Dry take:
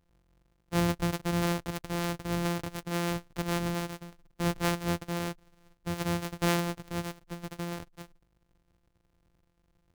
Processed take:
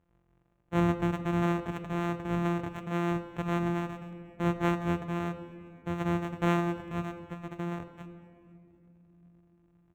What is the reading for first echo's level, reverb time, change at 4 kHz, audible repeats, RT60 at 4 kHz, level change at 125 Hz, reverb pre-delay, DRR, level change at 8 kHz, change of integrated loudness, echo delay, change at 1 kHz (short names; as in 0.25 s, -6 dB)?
-22.5 dB, 2.9 s, -9.0 dB, 3, 1.7 s, +1.0 dB, 3 ms, 9.5 dB, under -10 dB, +0.5 dB, 0.25 s, +1.5 dB